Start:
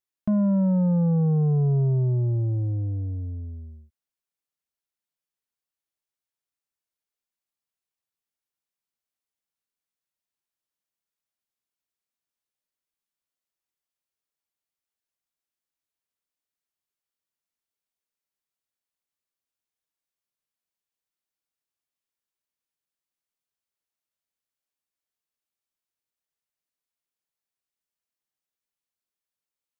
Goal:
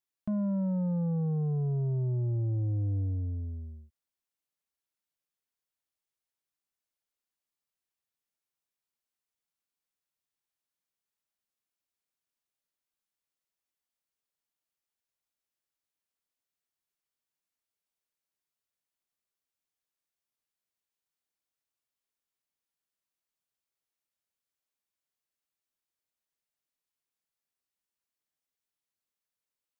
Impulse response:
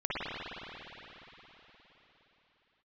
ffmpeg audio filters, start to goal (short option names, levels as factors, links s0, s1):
-af "alimiter=level_in=1.26:limit=0.0631:level=0:latency=1,volume=0.794,volume=0.841"